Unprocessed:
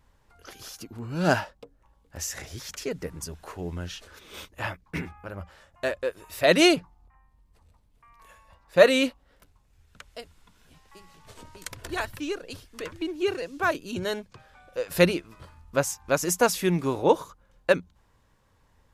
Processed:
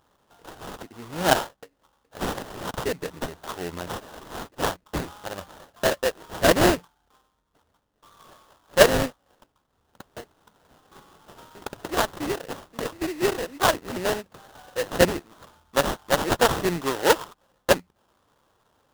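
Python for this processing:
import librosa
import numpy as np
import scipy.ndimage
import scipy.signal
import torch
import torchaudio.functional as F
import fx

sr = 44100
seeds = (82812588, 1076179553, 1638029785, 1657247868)

p1 = fx.highpass(x, sr, hz=600.0, slope=6)
p2 = fx.rider(p1, sr, range_db=5, speed_s=0.5)
p3 = p1 + (p2 * librosa.db_to_amplitude(-1.0))
y = fx.sample_hold(p3, sr, seeds[0], rate_hz=2300.0, jitter_pct=20)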